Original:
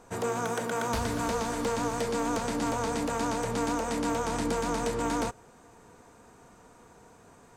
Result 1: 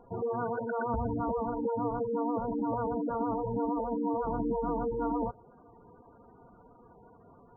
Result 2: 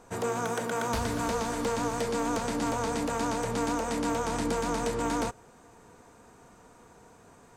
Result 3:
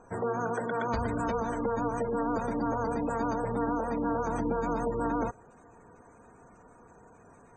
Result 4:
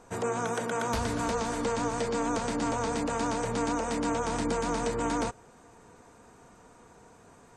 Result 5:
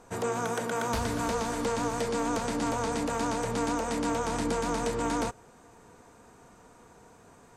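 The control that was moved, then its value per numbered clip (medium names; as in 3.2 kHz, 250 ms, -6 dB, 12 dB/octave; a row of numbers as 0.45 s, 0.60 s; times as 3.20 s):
spectral gate, under each frame's peak: -10 dB, -60 dB, -20 dB, -35 dB, -45 dB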